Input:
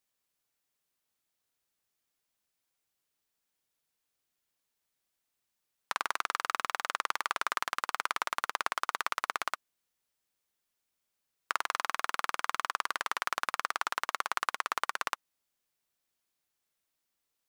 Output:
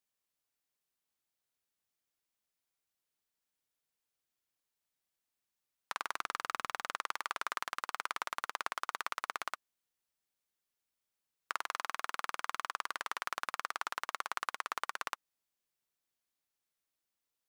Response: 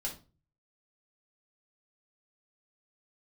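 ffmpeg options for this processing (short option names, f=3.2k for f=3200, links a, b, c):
-filter_complex "[0:a]asettb=1/sr,asplit=3[a][b][c];[a]atrim=end=6.134[d];[b]atrim=start=6.13:end=6.97,asetpts=PTS-STARTPTS,afade=t=in:d=0.004:c=qsin,afade=t=out:st=0.836:d=0.004:c=qsin,lowshelf=f=240:g=8[e];[c]atrim=start=6.966[f];[d][e]acrossfade=d=0.004:c1=hsin:c2=qsin[g];[g][f]acrossfade=d=0.004:c1=qsin:c2=hsin,volume=-5.5dB"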